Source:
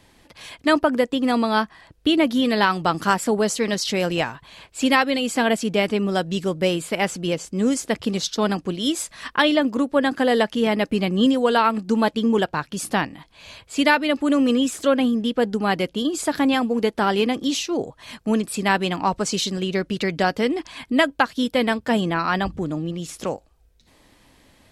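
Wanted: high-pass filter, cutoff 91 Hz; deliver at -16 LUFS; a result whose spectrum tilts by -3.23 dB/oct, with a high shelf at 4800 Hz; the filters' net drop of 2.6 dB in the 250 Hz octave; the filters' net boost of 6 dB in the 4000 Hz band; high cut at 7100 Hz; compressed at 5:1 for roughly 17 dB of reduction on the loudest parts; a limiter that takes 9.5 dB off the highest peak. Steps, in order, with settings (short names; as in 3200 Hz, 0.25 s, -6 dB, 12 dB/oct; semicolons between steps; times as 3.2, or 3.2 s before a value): HPF 91 Hz; LPF 7100 Hz; bell 250 Hz -3 dB; bell 4000 Hz +5.5 dB; high shelf 4800 Hz +6.5 dB; compressor 5:1, threshold -32 dBFS; gain +19.5 dB; limiter -5 dBFS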